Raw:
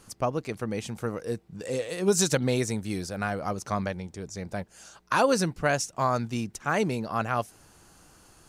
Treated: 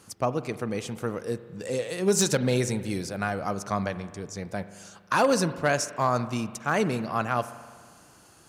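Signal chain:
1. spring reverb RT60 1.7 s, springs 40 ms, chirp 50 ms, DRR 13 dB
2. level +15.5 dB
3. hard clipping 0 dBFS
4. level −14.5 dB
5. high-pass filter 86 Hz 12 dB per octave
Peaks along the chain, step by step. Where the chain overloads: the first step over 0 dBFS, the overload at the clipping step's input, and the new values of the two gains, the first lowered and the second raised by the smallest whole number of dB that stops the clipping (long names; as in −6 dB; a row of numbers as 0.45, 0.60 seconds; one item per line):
−9.5, +6.0, 0.0, −14.5, −12.0 dBFS
step 2, 6.0 dB
step 2 +9.5 dB, step 4 −8.5 dB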